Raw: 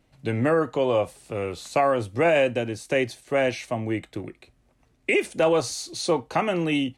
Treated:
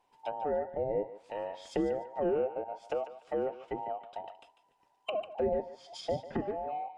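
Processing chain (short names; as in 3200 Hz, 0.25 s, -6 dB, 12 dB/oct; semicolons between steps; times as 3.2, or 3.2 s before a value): band inversion scrambler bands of 1000 Hz; treble ducked by the level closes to 670 Hz, closed at -22 dBFS; on a send: thinning echo 0.147 s, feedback 26%, high-pass 710 Hz, level -11 dB; on the sum: gain -8.5 dB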